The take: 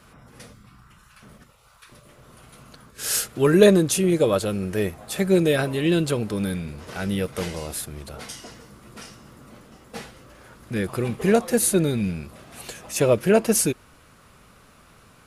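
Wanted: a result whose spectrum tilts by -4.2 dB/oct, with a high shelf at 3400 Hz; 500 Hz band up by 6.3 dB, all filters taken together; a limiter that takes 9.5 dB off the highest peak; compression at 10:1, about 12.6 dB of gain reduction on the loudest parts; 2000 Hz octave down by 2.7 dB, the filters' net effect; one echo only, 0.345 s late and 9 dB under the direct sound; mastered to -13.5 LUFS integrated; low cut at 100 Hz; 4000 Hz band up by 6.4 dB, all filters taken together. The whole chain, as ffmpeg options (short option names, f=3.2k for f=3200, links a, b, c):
-af "highpass=100,equalizer=f=500:t=o:g=8,equalizer=f=2k:t=o:g=-8,highshelf=f=3.4k:g=7,equalizer=f=4k:t=o:g=5,acompressor=threshold=-17dB:ratio=10,alimiter=limit=-17dB:level=0:latency=1,aecho=1:1:345:0.355,volume=13.5dB"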